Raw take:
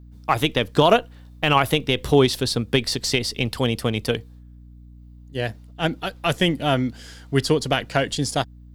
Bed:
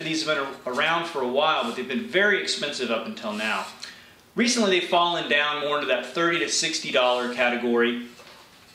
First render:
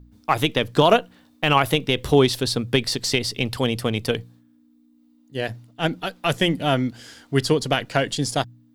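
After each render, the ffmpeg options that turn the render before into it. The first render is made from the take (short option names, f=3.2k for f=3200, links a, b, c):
-af "bandreject=f=60:t=h:w=4,bandreject=f=120:t=h:w=4,bandreject=f=180:t=h:w=4"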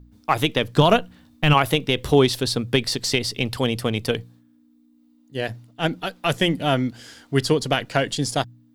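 -filter_complex "[0:a]asplit=3[a][b][c];[a]afade=t=out:st=0.77:d=0.02[d];[b]asubboost=boost=7:cutoff=210,afade=t=in:st=0.77:d=0.02,afade=t=out:st=1.53:d=0.02[e];[c]afade=t=in:st=1.53:d=0.02[f];[d][e][f]amix=inputs=3:normalize=0"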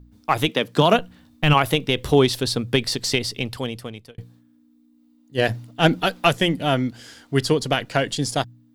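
-filter_complex "[0:a]asettb=1/sr,asplit=3[a][b][c];[a]atrim=end=0.484[d];[b]atrim=start=0.48:end=0.99,asetpts=PTS-STARTPTS,afade=t=in:d=0.004:c=qsin,afade=t=out:st=0.506:d=0.004:c=qsin,highpass=f=150:w=0.5412,highpass=f=150:w=1.3066[e];[c]atrim=start=0.986[f];[d][e]acrossfade=d=0.004:c1=hsin:c2=qsin[g];[g][f]acrossfade=d=0.004:c1=qsin:c2=hsin,asplit=3[h][i][j];[h]afade=t=out:st=5.37:d=0.02[k];[i]acontrast=87,afade=t=in:st=5.37:d=0.02,afade=t=out:st=6.28:d=0.02[l];[j]afade=t=in:st=6.28:d=0.02[m];[k][l][m]amix=inputs=3:normalize=0,asplit=2[n][o];[n]atrim=end=4.18,asetpts=PTS-STARTPTS,afade=t=out:st=3.17:d=1.01[p];[o]atrim=start=4.18,asetpts=PTS-STARTPTS,afade=t=in:d=0.004:c=hsin[q];[p][q]concat=n=2:v=0:a=1"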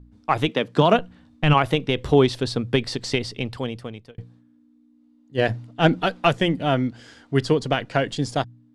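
-af "lowpass=f=9.8k:w=0.5412,lowpass=f=9.8k:w=1.3066,highshelf=f=3.8k:g=-10.5"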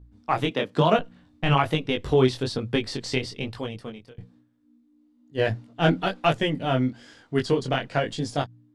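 -af "flanger=delay=18.5:depth=5:speed=1.1"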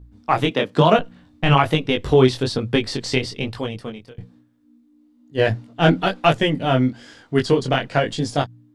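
-af "volume=5.5dB,alimiter=limit=-2dB:level=0:latency=1"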